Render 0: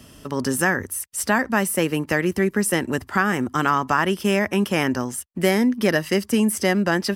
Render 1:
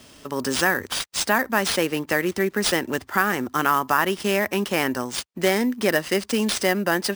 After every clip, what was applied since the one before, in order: tone controls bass -8 dB, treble +2 dB; sample-rate reducer 14000 Hz, jitter 0%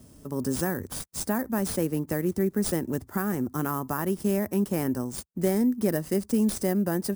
EQ curve 150 Hz 0 dB, 3000 Hz -25 dB, 10000 Hz -7 dB; gain +4 dB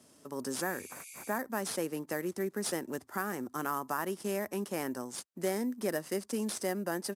weighting filter A; downsampling 32000 Hz; spectral repair 0.65–1.32, 2100–12000 Hz after; gain -2 dB

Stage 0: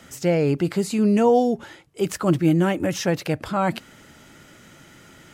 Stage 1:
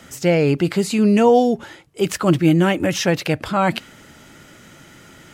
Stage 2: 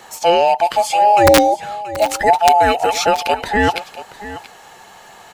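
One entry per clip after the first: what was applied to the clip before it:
dynamic EQ 2900 Hz, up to +5 dB, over -40 dBFS, Q 0.9; gain +3.5 dB
band inversion scrambler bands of 1000 Hz; wrapped overs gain 4.5 dB; echo 0.68 s -15.5 dB; gain +3 dB

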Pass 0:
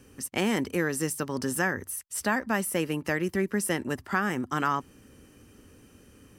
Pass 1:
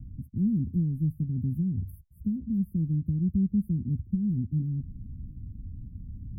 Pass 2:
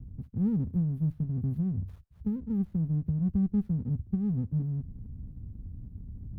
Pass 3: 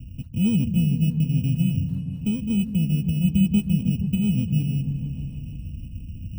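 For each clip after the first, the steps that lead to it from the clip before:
inverse Chebyshev band-stop 770–5800 Hz, stop band 70 dB; tilt -4 dB/oct; reverse; upward compressor, threshold -32 dBFS; reverse
running maximum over 17 samples; gain -1.5 dB
FFT order left unsorted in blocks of 16 samples; notch comb 380 Hz; repeats that get brighter 0.155 s, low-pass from 200 Hz, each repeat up 1 oct, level -6 dB; gain +6.5 dB

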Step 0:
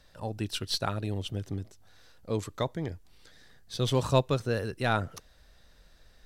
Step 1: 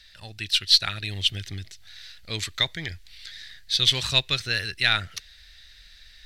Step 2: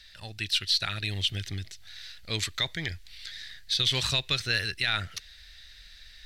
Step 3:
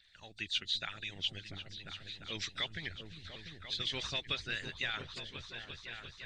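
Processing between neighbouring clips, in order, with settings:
graphic EQ 125/250/500/1000/2000/4000 Hz -7/-11/-12/-12/+11/+11 dB; in parallel at -2.5 dB: vocal rider 0.5 s
limiter -15 dBFS, peak gain reduction 10.5 dB
nonlinear frequency compression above 3200 Hz 1.5:1; repeats that get brighter 0.347 s, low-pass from 200 Hz, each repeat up 2 oct, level -3 dB; harmonic-percussive split harmonic -17 dB; gain -6 dB

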